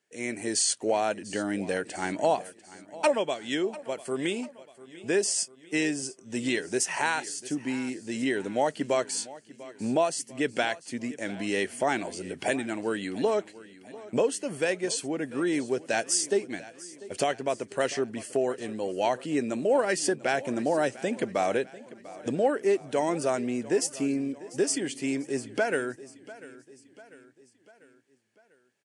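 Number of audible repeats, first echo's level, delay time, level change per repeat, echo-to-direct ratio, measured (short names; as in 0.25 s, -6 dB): 3, -18.5 dB, 0.695 s, -6.0 dB, -17.0 dB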